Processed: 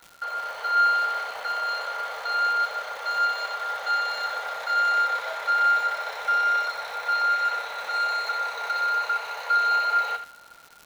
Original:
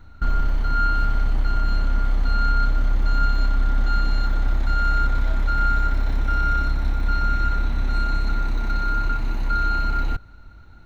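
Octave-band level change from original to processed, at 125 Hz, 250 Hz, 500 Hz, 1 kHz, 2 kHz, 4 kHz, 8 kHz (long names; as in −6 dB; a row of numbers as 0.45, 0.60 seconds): below −40 dB, below −30 dB, +3.0 dB, +4.0 dB, +4.0 dB, +5.0 dB, can't be measured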